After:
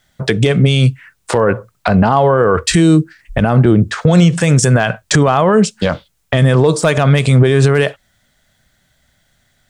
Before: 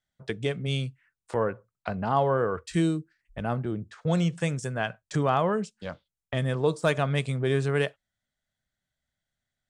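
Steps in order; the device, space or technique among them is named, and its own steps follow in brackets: loud club master (compression 2:1, threshold -30 dBFS, peak gain reduction 7 dB; hard clipper -19 dBFS, distortion -31 dB; loudness maximiser +27.5 dB); trim -1 dB

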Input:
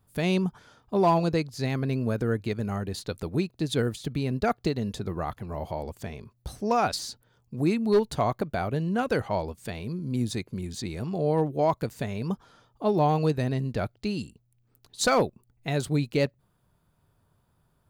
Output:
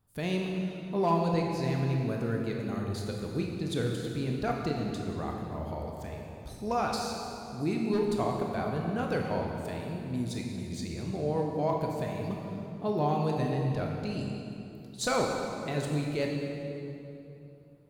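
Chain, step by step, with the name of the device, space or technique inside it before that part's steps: stairwell (reverberation RT60 3.0 s, pre-delay 19 ms, DRR 0 dB); trim -7 dB

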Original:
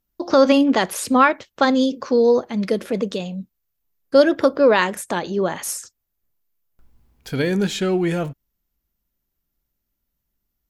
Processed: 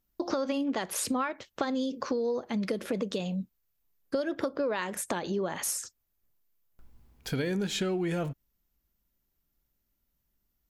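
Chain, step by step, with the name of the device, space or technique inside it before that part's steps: serial compression, peaks first (compression 5:1, threshold -22 dBFS, peak gain reduction 13 dB; compression 2:1, threshold -29 dBFS, peak gain reduction 6 dB); trim -1 dB

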